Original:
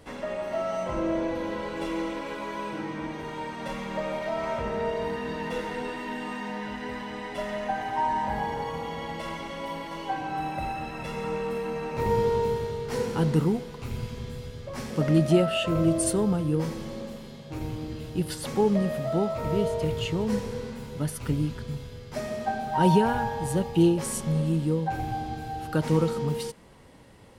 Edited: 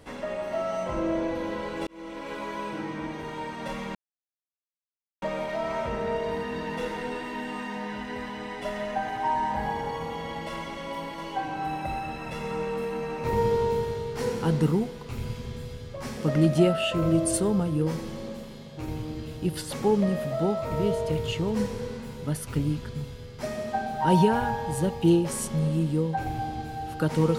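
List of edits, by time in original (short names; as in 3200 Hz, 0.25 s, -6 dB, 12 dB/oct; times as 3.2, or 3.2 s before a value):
1.87–2.36 fade in
3.95 insert silence 1.27 s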